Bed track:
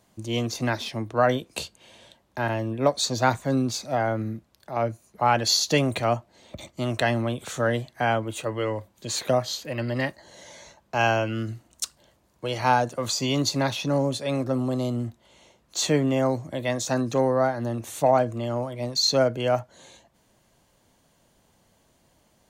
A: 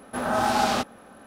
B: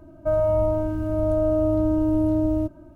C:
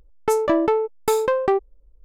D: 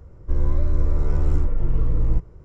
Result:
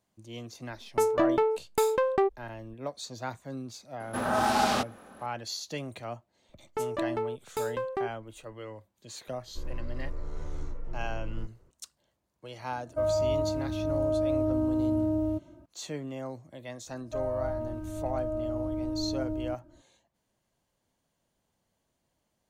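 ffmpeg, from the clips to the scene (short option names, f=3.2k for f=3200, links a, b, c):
-filter_complex "[3:a]asplit=2[a][b];[2:a]asplit=2[c][d];[0:a]volume=-15dB[e];[4:a]equalizer=f=67:w=0.33:g=-9.5[f];[c]highpass=58[g];[a]atrim=end=2.04,asetpts=PTS-STARTPTS,volume=-5.5dB,afade=t=in:d=0.004:c=hsin,afade=t=out:st=2.036:d=0.004:c=hsin,adelay=700[h];[1:a]atrim=end=1.26,asetpts=PTS-STARTPTS,volume=-2.5dB,afade=t=in:d=0.004:c=hsin,afade=t=out:st=1.256:d=0.004:c=hsin,adelay=4000[i];[b]atrim=end=2.04,asetpts=PTS-STARTPTS,volume=-12.5dB,afade=t=in:d=0.004:c=hsin,afade=t=out:st=2.036:d=0.004:c=hsin,adelay=6490[j];[f]atrim=end=2.44,asetpts=PTS-STARTPTS,volume=-10.5dB,afade=t=in:d=0.004:c=hsin,afade=t=out:st=2.436:d=0.004:c=hsin,adelay=9270[k];[g]atrim=end=2.95,asetpts=PTS-STARTPTS,volume=-6dB,afade=t=in:d=0.004:c=hsin,afade=t=out:st=2.946:d=0.004:c=hsin,adelay=12710[l];[d]atrim=end=2.95,asetpts=PTS-STARTPTS,volume=-11.5dB,afade=t=in:d=0.004:c=hsin,afade=t=out:st=2.946:d=0.004:c=hsin,adelay=16870[m];[e][h][i][j][k][l][m]amix=inputs=7:normalize=0"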